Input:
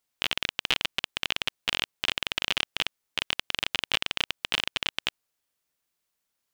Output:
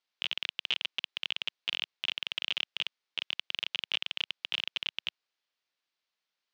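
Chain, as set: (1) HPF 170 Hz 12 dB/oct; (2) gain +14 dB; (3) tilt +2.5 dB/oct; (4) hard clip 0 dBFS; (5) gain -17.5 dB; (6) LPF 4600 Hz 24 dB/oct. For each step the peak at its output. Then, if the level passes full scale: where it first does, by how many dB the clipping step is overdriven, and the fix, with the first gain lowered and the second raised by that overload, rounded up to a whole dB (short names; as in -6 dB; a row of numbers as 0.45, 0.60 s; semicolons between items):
-8.0, +6.0, +9.5, 0.0, -17.5, -15.5 dBFS; step 2, 9.5 dB; step 2 +4 dB, step 5 -7.5 dB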